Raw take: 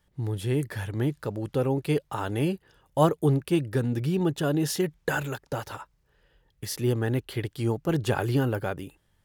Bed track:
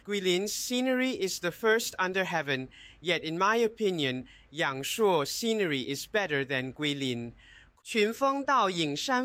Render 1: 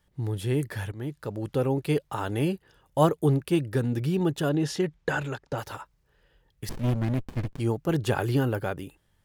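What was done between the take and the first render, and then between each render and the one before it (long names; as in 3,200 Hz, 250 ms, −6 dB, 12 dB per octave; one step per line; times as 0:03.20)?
0:00.92–0:01.44: fade in, from −12.5 dB
0:04.49–0:05.58: high-frequency loss of the air 66 metres
0:06.69–0:07.60: windowed peak hold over 65 samples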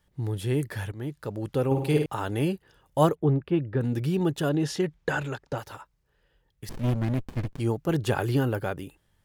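0:01.66–0:02.06: flutter between parallel walls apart 9 metres, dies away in 0.67 s
0:03.15–0:03.81: high-frequency loss of the air 450 metres
0:05.58–0:06.74: clip gain −4 dB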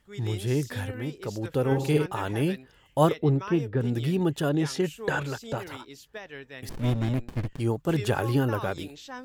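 mix in bed track −12.5 dB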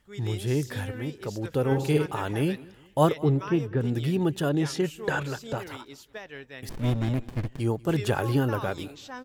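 repeating echo 192 ms, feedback 39%, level −23 dB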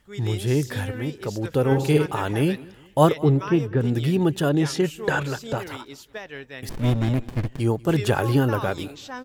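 level +4.5 dB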